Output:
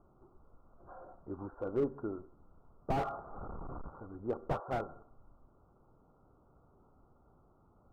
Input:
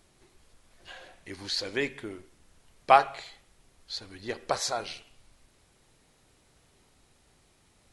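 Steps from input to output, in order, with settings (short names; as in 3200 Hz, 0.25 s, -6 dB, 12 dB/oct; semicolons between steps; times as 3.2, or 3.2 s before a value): 2.97–4 delta modulation 64 kbps, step -34.5 dBFS; Chebyshev low-pass 1400 Hz, order 8; slew limiter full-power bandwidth 18 Hz; gain +1 dB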